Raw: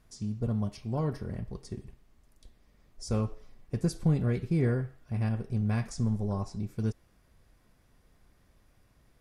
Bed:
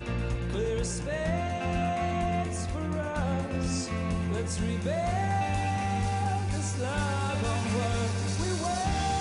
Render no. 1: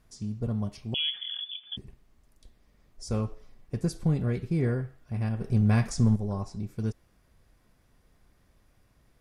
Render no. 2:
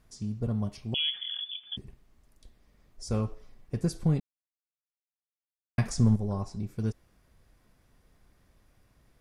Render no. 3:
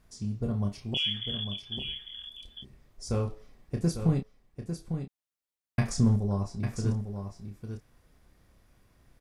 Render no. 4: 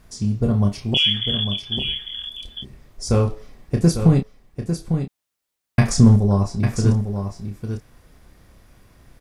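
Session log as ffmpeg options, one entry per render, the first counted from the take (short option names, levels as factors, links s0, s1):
-filter_complex "[0:a]asettb=1/sr,asplit=3[s0][s1][s2];[s0]atrim=end=0.944[s3];[s1]atrim=start=0.94:end=1.77,asetpts=PTS-STARTPTS,afade=t=in:d=0.004:c=qsin,afade=t=out:st=0.826:d=0.004:c=qsin,lowpass=f=3000:t=q:w=0.5098,lowpass=f=3000:t=q:w=0.6013,lowpass=f=3000:t=q:w=0.9,lowpass=f=3000:t=q:w=2.563,afreqshift=-3500[s4];[s2]atrim=start=1.766[s5];[s3][s4]acrossfade=d=0.004:c1=hsin:c2=qsin[s6];[s6][s5]acrossfade=d=0.004:c1=qsin:c2=hsin,asettb=1/sr,asplit=3[s7][s8][s9];[s7]atrim=end=5.414[s10];[s8]atrim=start=5.41:end=6.16,asetpts=PTS-STARTPTS,afade=t=in:d=0.004:c=qsin,afade=t=out:st=0.746:d=0.004:c=qsin,acontrast=63[s11];[s9]atrim=start=6.156[s12];[s10][s11]acrossfade=d=0.004:c1=hsin:c2=qsin[s13];[s13][s12]acrossfade=d=0.004:c1=qsin:c2=hsin"
-filter_complex "[0:a]asplit=3[s0][s1][s2];[s0]atrim=end=4.2,asetpts=PTS-STARTPTS,afade=t=out:st=4.196:d=0.004:c=hsin[s3];[s1]atrim=start=4.2:end=5.78,asetpts=PTS-STARTPTS,volume=0[s4];[s2]atrim=start=5.78,asetpts=PTS-STARTPTS,afade=t=in:d=0.004:c=hsin[s5];[s3][s4][s5]concat=n=3:v=0:a=1"
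-filter_complex "[0:a]asplit=2[s0][s1];[s1]adelay=30,volume=0.473[s2];[s0][s2]amix=inputs=2:normalize=0,aecho=1:1:850:0.398"
-af "volume=3.76,alimiter=limit=0.794:level=0:latency=1"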